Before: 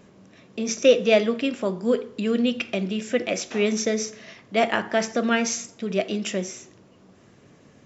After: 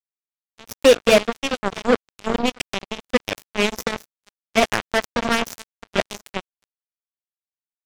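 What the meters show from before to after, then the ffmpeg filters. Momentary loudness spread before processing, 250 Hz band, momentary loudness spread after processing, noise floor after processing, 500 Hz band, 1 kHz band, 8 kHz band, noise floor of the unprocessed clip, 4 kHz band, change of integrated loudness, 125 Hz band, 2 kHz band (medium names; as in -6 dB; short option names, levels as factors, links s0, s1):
11 LU, -1.5 dB, 15 LU, under -85 dBFS, +1.5 dB, +5.0 dB, no reading, -54 dBFS, +4.5 dB, +2.5 dB, -1.0 dB, +4.0 dB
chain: -af "aecho=1:1:204|642:0.112|0.316,acrusher=bits=2:mix=0:aa=0.5,volume=1.41"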